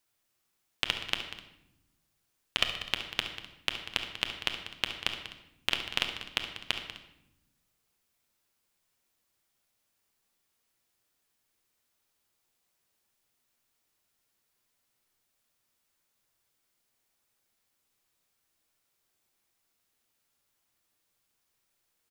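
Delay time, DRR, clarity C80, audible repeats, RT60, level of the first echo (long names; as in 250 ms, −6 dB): 70 ms, 3.0 dB, 8.5 dB, 3, 0.80 s, −12.5 dB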